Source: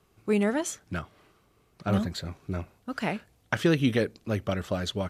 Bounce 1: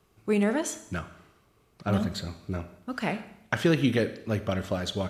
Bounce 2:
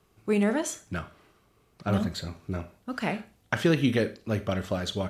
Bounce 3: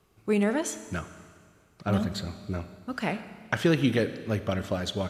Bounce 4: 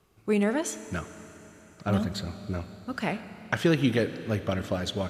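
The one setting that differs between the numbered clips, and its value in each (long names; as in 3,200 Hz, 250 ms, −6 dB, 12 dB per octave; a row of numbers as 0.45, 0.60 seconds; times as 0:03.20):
four-comb reverb, RT60: 0.81, 0.34, 1.9, 4.1 seconds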